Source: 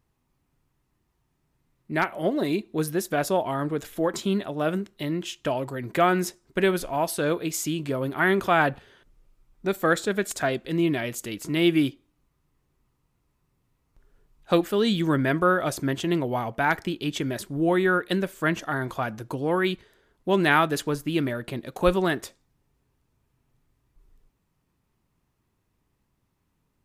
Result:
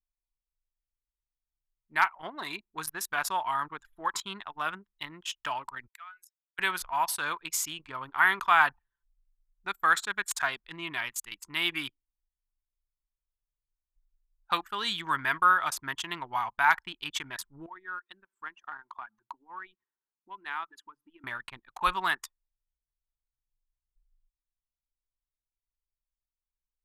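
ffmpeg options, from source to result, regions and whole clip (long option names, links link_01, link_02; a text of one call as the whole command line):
ffmpeg -i in.wav -filter_complex "[0:a]asettb=1/sr,asplit=3[link_01][link_02][link_03];[link_01]atrim=end=5.874[link_04];[link_02]atrim=start=5.87:end=6.59,asetpts=PTS-STARTPTS,afade=type=in:duration=0.004:curve=qsin,afade=type=out:start_time=0.716:duration=0.004:curve=qsin,highpass=360,aderivative,acompressor=threshold=-36dB:ratio=10:attack=3.2:release=140:knee=1:detection=peak[link_05];[link_03]atrim=start=6.586[link_06];[link_04][link_05]acrossfade=duration=0.004:curve1=hsin:curve2=qsin[link_07];[link_07][link_06]acrossfade=duration=0.004:curve1=qsin:curve2=hsin,asettb=1/sr,asplit=3[link_08][link_09][link_10];[link_08]atrim=end=17.664[link_11];[link_09]atrim=start=17.66:end=21.24,asetpts=PTS-STARTPTS,afade=type=in:duration=0.004:curve=qsin,afade=type=out:start_time=3.576:duration=0.004:curve=qsin,acompressor=threshold=-40dB:ratio=2.5:attack=3.2:release=140:knee=1:detection=peak,highpass=frequency=260:width_type=q:width=1.8[link_12];[link_10]atrim=start=21.236[link_13];[link_11][link_12]acrossfade=duration=0.004:curve1=hsin:curve2=qsin[link_14];[link_14][link_13]acrossfade=duration=0.004:curve1=qsin:curve2=hsin,lowshelf=frequency=730:width_type=q:width=3:gain=-9.5,anlmdn=3.98,equalizer=frequency=200:width=0.43:gain=-11" out.wav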